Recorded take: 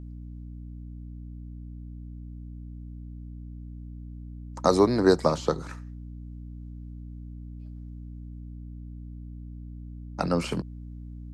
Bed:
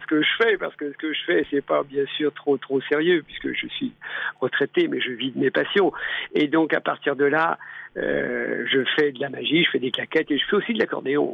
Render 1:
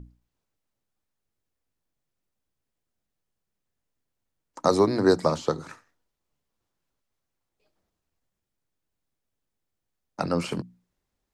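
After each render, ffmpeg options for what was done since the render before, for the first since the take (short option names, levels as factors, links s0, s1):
-af "bandreject=f=60:t=h:w=6,bandreject=f=120:t=h:w=6,bandreject=f=180:t=h:w=6,bandreject=f=240:t=h:w=6,bandreject=f=300:t=h:w=6"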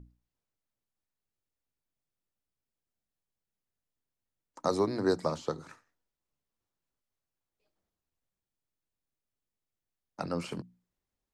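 -af "volume=0.398"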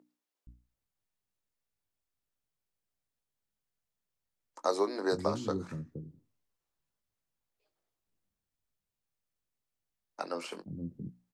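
-filter_complex "[0:a]asplit=2[s0][s1];[s1]adelay=20,volume=0.266[s2];[s0][s2]amix=inputs=2:normalize=0,acrossover=split=290[s3][s4];[s3]adelay=470[s5];[s5][s4]amix=inputs=2:normalize=0"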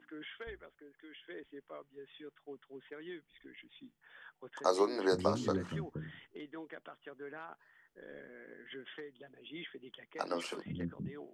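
-filter_complex "[1:a]volume=0.0422[s0];[0:a][s0]amix=inputs=2:normalize=0"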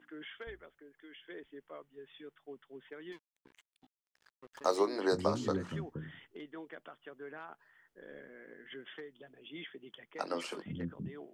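-filter_complex "[0:a]asettb=1/sr,asplit=3[s0][s1][s2];[s0]atrim=end=3.124[s3];[s1]atrim=start=3.12:end=4.77,asetpts=PTS-STARTPTS,afade=t=in:d=0.004:c=qsin,afade=t=out:st=1.646:d=0.004:c=qsin,aeval=exprs='sgn(val(0))*max(abs(val(0))-0.00299,0)':c=same[s4];[s2]atrim=start=4.766[s5];[s3][s4]acrossfade=d=0.004:c1=hsin:c2=qsin[s6];[s6][s5]acrossfade=d=0.004:c1=qsin:c2=hsin,asettb=1/sr,asplit=3[s7][s8][s9];[s7]atrim=end=9.434[s10];[s8]atrim=start=9.43:end=9.99,asetpts=PTS-STARTPTS,afade=t=in:d=0.004:c=qsin,afade=t=out:st=0.556:d=0.004:c=qsin,highpass=43[s11];[s9]atrim=start=9.986[s12];[s10][s11]acrossfade=d=0.004:c1=hsin:c2=qsin[s13];[s13][s12]acrossfade=d=0.004:c1=qsin:c2=hsin"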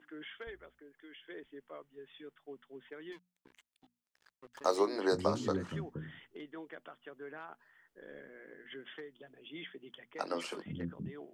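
-af "bandreject=f=60:t=h:w=6,bandreject=f=120:t=h:w=6,bandreject=f=180:t=h:w=6,bandreject=f=240:t=h:w=6"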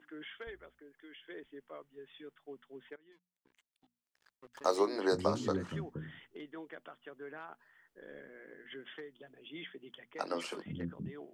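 -filter_complex "[0:a]asplit=2[s0][s1];[s0]atrim=end=2.96,asetpts=PTS-STARTPTS,afade=t=out:st=2.956:d=0.004:c=hsin:silence=0.0794328[s2];[s1]atrim=start=2.96,asetpts=PTS-STARTPTS,afade=t=in:d=1.69:silence=0.0794328[s3];[s2][s3]concat=n=2:v=0:a=1"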